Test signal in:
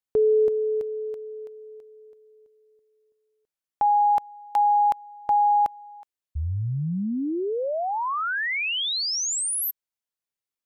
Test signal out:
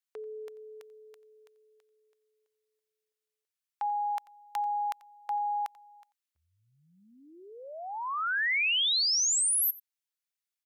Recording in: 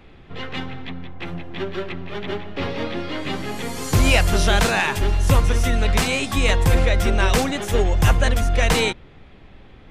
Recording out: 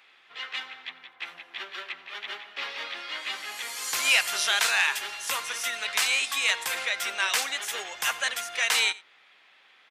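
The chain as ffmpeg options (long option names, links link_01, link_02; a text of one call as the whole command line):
ffmpeg -i in.wav -filter_complex "[0:a]highpass=1500,asplit=2[link_01][link_02];[link_02]aecho=0:1:89:0.0891[link_03];[link_01][link_03]amix=inputs=2:normalize=0" out.wav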